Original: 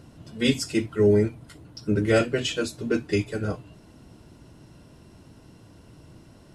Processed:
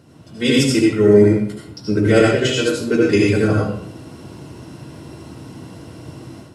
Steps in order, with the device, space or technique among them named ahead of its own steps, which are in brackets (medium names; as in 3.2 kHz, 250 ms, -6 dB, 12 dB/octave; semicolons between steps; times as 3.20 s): far laptop microphone (reverberation RT60 0.65 s, pre-delay 68 ms, DRR -2.5 dB; high-pass 100 Hz; level rider gain up to 10 dB)